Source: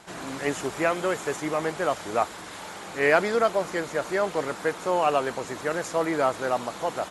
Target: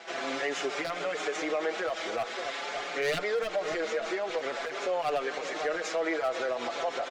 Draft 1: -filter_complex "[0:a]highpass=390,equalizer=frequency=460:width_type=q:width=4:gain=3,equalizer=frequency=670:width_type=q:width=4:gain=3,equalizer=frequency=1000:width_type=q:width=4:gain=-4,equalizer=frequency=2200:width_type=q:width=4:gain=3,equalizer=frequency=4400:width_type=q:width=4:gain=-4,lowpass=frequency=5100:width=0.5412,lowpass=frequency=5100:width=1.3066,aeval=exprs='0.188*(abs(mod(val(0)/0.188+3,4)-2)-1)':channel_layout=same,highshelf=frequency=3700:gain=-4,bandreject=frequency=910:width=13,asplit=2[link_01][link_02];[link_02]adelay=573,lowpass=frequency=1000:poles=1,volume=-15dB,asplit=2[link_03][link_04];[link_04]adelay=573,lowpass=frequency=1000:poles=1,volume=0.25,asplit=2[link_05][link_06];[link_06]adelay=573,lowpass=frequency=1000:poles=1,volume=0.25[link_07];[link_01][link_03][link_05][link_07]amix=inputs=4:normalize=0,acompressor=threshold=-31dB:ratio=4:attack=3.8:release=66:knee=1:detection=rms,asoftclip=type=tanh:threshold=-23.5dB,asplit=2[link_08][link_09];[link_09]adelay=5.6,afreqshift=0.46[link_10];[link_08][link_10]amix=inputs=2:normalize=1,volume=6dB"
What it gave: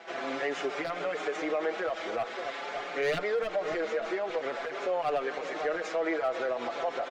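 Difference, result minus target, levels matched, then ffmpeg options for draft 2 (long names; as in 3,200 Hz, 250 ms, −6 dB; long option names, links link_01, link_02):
8,000 Hz band −8.0 dB
-filter_complex "[0:a]highpass=390,equalizer=frequency=460:width_type=q:width=4:gain=3,equalizer=frequency=670:width_type=q:width=4:gain=3,equalizer=frequency=1000:width_type=q:width=4:gain=-4,equalizer=frequency=2200:width_type=q:width=4:gain=3,equalizer=frequency=4400:width_type=q:width=4:gain=-4,lowpass=frequency=5100:width=0.5412,lowpass=frequency=5100:width=1.3066,aeval=exprs='0.188*(abs(mod(val(0)/0.188+3,4)-2)-1)':channel_layout=same,highshelf=frequency=3700:gain=7.5,bandreject=frequency=910:width=13,asplit=2[link_01][link_02];[link_02]adelay=573,lowpass=frequency=1000:poles=1,volume=-15dB,asplit=2[link_03][link_04];[link_04]adelay=573,lowpass=frequency=1000:poles=1,volume=0.25,asplit=2[link_05][link_06];[link_06]adelay=573,lowpass=frequency=1000:poles=1,volume=0.25[link_07];[link_01][link_03][link_05][link_07]amix=inputs=4:normalize=0,acompressor=threshold=-31dB:ratio=4:attack=3.8:release=66:knee=1:detection=rms,asoftclip=type=tanh:threshold=-23.5dB,asplit=2[link_08][link_09];[link_09]adelay=5.6,afreqshift=0.46[link_10];[link_08][link_10]amix=inputs=2:normalize=1,volume=6dB"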